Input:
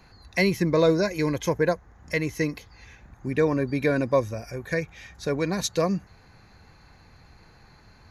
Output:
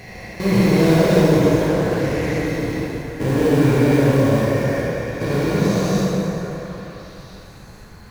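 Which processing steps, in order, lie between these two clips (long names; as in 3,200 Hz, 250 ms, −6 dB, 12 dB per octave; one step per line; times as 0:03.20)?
spectrum averaged block by block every 400 ms
in parallel at −6.5 dB: sample-rate reduction 1,200 Hz, jitter 20%
on the sum: background noise pink −65 dBFS
on a send: echo through a band-pass that steps 450 ms, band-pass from 550 Hz, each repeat 1.4 octaves, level −7.5 dB
on the sum: dense smooth reverb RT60 3.2 s, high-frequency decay 0.65×, DRR −7.5 dB
0:01.69–0:02.46: highs frequency-modulated by the lows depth 0.18 ms
level +1.5 dB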